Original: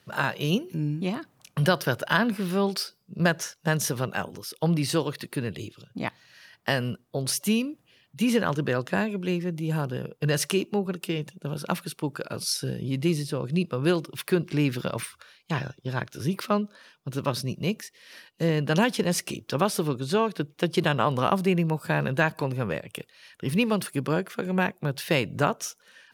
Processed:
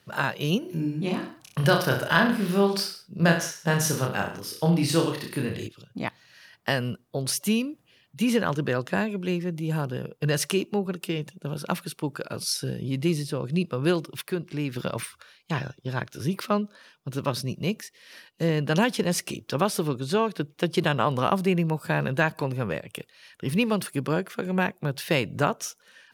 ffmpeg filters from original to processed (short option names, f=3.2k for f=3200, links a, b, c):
-filter_complex "[0:a]asettb=1/sr,asplit=3[a][b][c];[a]atrim=end=0.594[d];[b]atrim=start=0.59:end=5.67,asetpts=PTS-STARTPTS,afade=t=in:d=0.004:c=qsin,afade=t=out:st=5.076:d=0.004:c=qsin,aecho=1:1:30|63|99.3|139.2|183.2:0.631|0.398|0.251|0.158|0.1,atrim=end_sample=224028[e];[c]atrim=start=5.666[f];[d][e]acrossfade=d=0.004:c1=hsin:c2=qsin[g];[g][f]acrossfade=d=0.004:c1=qsin:c2=hsin,asplit=3[h][i][j];[h]atrim=end=14.212[k];[i]atrim=start=14.208:end=14.762,asetpts=PTS-STARTPTS,volume=-5.5dB[l];[j]atrim=start=14.758[m];[k][l]acrossfade=d=0.004:c1=hsin:c2=hsin[n];[n][m]acrossfade=d=0.004:c1=hsin:c2=hsin"